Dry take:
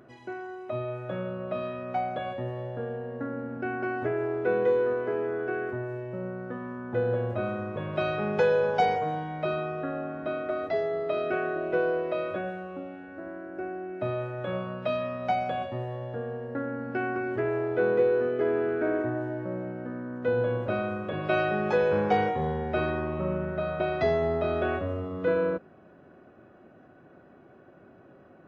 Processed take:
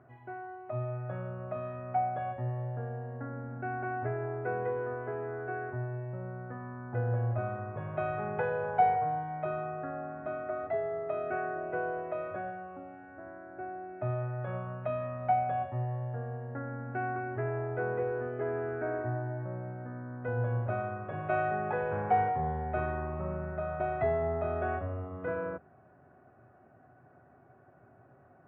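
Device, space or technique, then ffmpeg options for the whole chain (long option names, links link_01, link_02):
bass cabinet: -af "highpass=62,equalizer=frequency=77:width_type=q:width=4:gain=6,equalizer=frequency=120:width_type=q:width=4:gain=9,equalizer=frequency=200:width_type=q:width=4:gain=-7,equalizer=frequency=320:width_type=q:width=4:gain=-7,equalizer=frequency=510:width_type=q:width=4:gain=-6,equalizer=frequency=740:width_type=q:width=4:gain=6,lowpass=frequency=2100:width=0.5412,lowpass=frequency=2100:width=1.3066,volume=-5dB"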